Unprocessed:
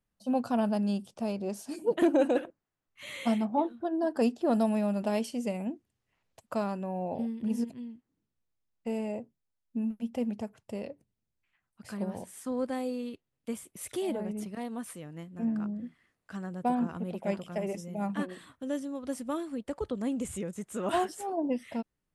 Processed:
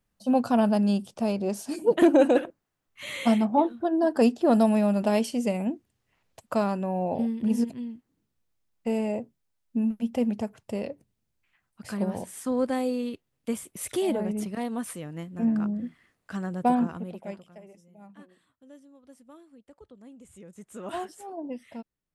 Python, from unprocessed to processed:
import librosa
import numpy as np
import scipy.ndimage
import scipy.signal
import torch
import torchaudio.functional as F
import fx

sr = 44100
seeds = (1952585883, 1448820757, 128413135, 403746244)

y = fx.gain(x, sr, db=fx.line((16.75, 6.0), (17.29, -6.0), (17.68, -17.0), (20.22, -17.0), (20.67, -5.5)))